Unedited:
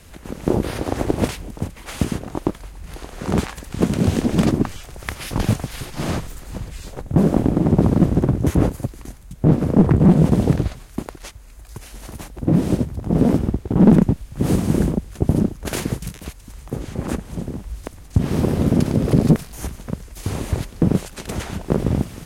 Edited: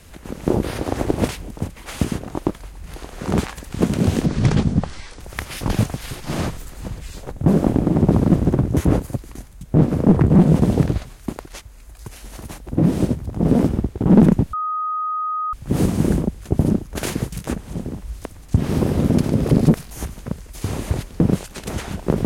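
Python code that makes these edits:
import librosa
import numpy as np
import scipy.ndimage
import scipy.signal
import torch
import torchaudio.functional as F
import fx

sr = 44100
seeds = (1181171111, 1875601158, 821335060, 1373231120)

y = fx.edit(x, sr, fx.speed_span(start_s=4.26, length_s=0.64, speed=0.68),
    fx.insert_tone(at_s=14.23, length_s=1.0, hz=1250.0, db=-20.5),
    fx.cut(start_s=16.17, length_s=0.92), tone=tone)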